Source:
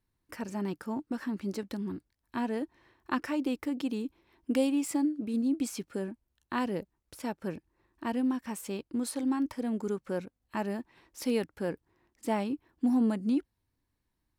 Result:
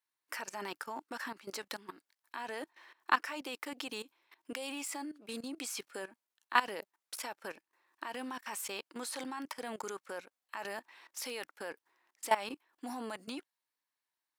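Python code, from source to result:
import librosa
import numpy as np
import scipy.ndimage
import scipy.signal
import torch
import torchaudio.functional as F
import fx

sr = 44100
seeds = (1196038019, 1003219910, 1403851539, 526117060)

y = scipy.signal.sosfilt(scipy.signal.butter(2, 890.0, 'highpass', fs=sr, output='sos'), x)
y = fx.level_steps(y, sr, step_db=17)
y = y * 10.0 ** (10.5 / 20.0)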